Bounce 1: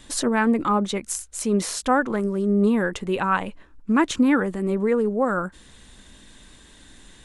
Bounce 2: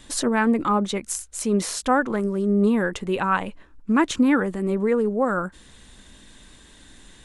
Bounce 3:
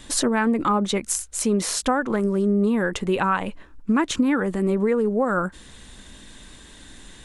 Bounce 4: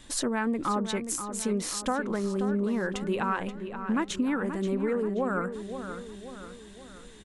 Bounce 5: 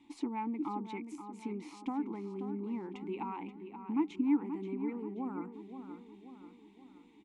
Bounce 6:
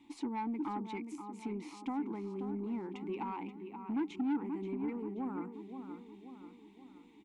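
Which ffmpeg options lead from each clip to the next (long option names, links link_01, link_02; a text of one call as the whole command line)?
ffmpeg -i in.wav -af anull out.wav
ffmpeg -i in.wav -af "acompressor=threshold=-21dB:ratio=6,volume=4dB" out.wav
ffmpeg -i in.wav -filter_complex "[0:a]asplit=2[link_01][link_02];[link_02]adelay=530,lowpass=frequency=3600:poles=1,volume=-9dB,asplit=2[link_03][link_04];[link_04]adelay=530,lowpass=frequency=3600:poles=1,volume=0.51,asplit=2[link_05][link_06];[link_06]adelay=530,lowpass=frequency=3600:poles=1,volume=0.51,asplit=2[link_07][link_08];[link_08]adelay=530,lowpass=frequency=3600:poles=1,volume=0.51,asplit=2[link_09][link_10];[link_10]adelay=530,lowpass=frequency=3600:poles=1,volume=0.51,asplit=2[link_11][link_12];[link_12]adelay=530,lowpass=frequency=3600:poles=1,volume=0.51[link_13];[link_01][link_03][link_05][link_07][link_09][link_11][link_13]amix=inputs=7:normalize=0,volume=-7.5dB" out.wav
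ffmpeg -i in.wav -filter_complex "[0:a]asplit=3[link_01][link_02][link_03];[link_01]bandpass=frequency=300:width_type=q:width=8,volume=0dB[link_04];[link_02]bandpass=frequency=870:width_type=q:width=8,volume=-6dB[link_05];[link_03]bandpass=frequency=2240:width_type=q:width=8,volume=-9dB[link_06];[link_04][link_05][link_06]amix=inputs=3:normalize=0,volume=3.5dB" out.wav
ffmpeg -i in.wav -af "asoftclip=type=tanh:threshold=-30dB,volume=1dB" out.wav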